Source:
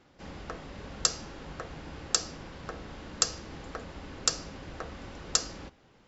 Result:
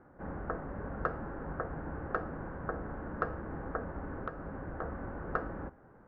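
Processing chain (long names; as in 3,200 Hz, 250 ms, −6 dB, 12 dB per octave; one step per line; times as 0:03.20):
Chebyshev low-pass filter 1,600 Hz, order 4
0:04.18–0:04.82: downward compressor 5 to 1, threshold −40 dBFS, peak gain reduction 9 dB
level +4 dB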